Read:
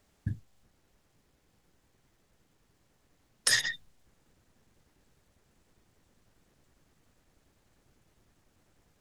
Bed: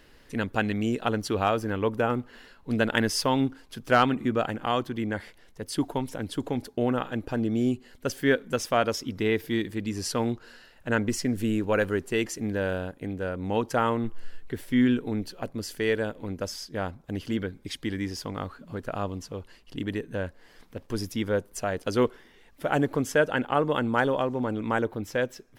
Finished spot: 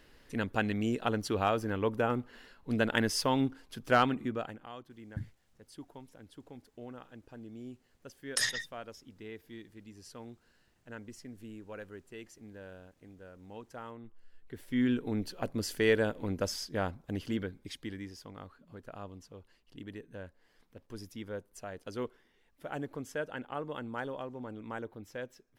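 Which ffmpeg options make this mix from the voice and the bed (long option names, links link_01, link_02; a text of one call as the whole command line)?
ffmpeg -i stem1.wav -i stem2.wav -filter_complex "[0:a]adelay=4900,volume=-5dB[link_01];[1:a]volume=15.5dB,afade=type=out:start_time=3.97:duration=0.72:silence=0.158489,afade=type=in:start_time=14.29:duration=1.31:silence=0.1,afade=type=out:start_time=16.51:duration=1.64:silence=0.211349[link_02];[link_01][link_02]amix=inputs=2:normalize=0" out.wav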